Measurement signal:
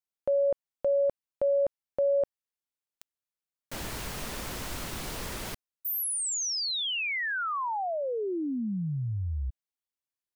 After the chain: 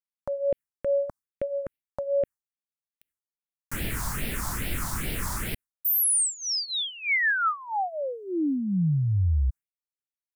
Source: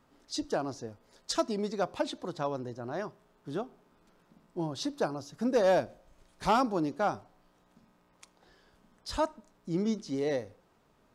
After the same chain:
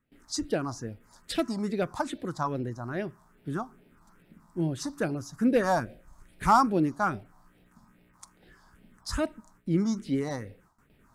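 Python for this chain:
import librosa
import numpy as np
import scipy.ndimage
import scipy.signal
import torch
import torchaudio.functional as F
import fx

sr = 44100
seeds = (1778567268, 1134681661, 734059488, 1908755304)

y = fx.gate_hold(x, sr, open_db=-56.0, close_db=-63.0, hold_ms=36.0, range_db=-17, attack_ms=0.14, release_ms=130.0)
y = fx.phaser_stages(y, sr, stages=4, low_hz=430.0, high_hz=1100.0, hz=2.4, feedback_pct=30)
y = F.gain(torch.from_numpy(y), 7.5).numpy()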